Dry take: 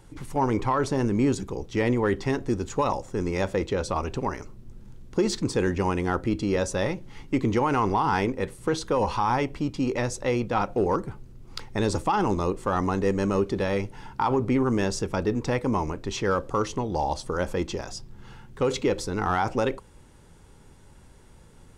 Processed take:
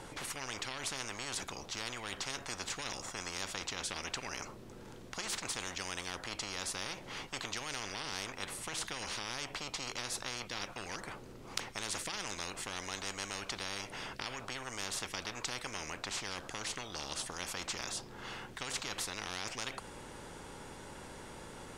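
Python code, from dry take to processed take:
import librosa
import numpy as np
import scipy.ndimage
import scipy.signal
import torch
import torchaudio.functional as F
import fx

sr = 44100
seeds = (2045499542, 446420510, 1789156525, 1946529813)

y = fx.high_shelf(x, sr, hz=7700.0, db=-7.0)
y = fx.spectral_comp(y, sr, ratio=10.0)
y = y * librosa.db_to_amplitude(-1.5)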